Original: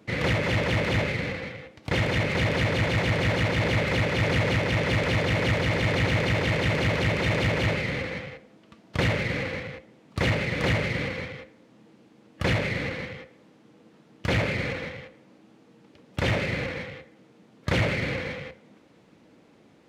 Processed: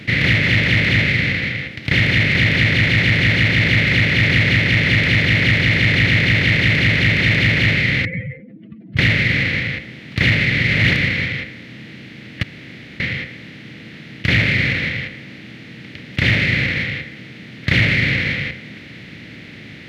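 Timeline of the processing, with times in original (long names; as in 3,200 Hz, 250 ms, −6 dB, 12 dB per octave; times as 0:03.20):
0:08.05–0:08.97: expanding power law on the bin magnitudes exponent 3.5
0:10.51–0:11.06: reverse
0:12.43–0:13.00: fill with room tone
whole clip: compressor on every frequency bin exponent 0.6; graphic EQ with 10 bands 125 Hz +5 dB, 250 Hz +4 dB, 500 Hz −6 dB, 1,000 Hz −11 dB, 2,000 Hz +11 dB, 4,000 Hz +6 dB, 8,000 Hz −6 dB; level +2 dB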